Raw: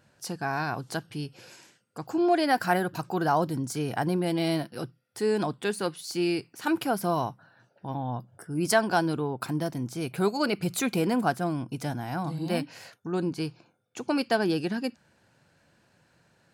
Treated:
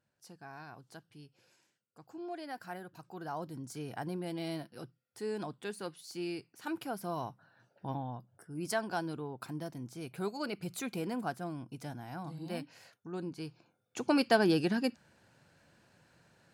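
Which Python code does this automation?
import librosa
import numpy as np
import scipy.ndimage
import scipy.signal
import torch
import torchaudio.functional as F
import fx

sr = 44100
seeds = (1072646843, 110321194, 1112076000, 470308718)

y = fx.gain(x, sr, db=fx.line((2.97, -19.0), (3.75, -11.5), (7.05, -11.5), (7.89, -3.0), (8.17, -11.0), (13.41, -11.0), (14.0, -1.0)))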